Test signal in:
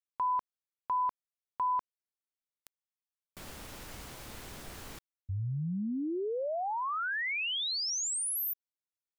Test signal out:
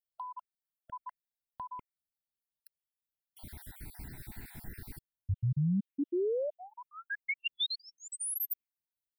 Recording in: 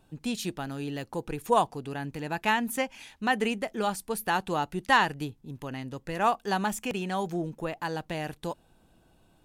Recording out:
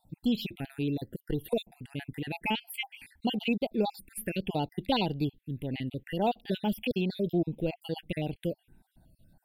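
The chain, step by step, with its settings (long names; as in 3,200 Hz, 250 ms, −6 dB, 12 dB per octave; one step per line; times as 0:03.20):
time-frequency cells dropped at random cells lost 49%
phaser with its sweep stopped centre 2,800 Hz, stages 4
phaser swept by the level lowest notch 380 Hz, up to 1,800 Hz, full sweep at −32.5 dBFS
level +5.5 dB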